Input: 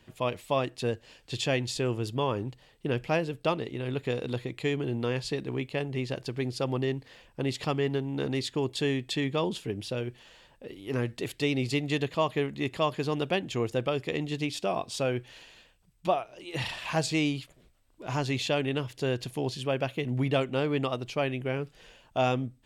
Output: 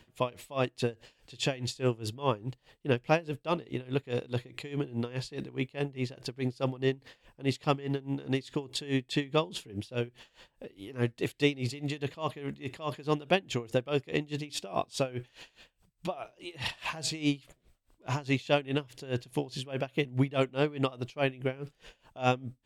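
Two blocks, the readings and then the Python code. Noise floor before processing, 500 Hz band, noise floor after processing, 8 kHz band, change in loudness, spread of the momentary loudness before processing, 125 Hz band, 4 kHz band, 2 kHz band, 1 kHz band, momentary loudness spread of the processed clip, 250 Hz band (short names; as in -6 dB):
-62 dBFS, -2.5 dB, -72 dBFS, -2.0 dB, -2.0 dB, 7 LU, -2.0 dB, -2.0 dB, -2.0 dB, -2.5 dB, 10 LU, -2.0 dB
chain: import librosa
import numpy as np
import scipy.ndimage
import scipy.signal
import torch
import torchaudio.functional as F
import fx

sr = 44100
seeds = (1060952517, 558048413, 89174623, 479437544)

y = x * 10.0 ** (-21 * (0.5 - 0.5 * np.cos(2.0 * np.pi * 4.8 * np.arange(len(x)) / sr)) / 20.0)
y = y * 10.0 ** (3.5 / 20.0)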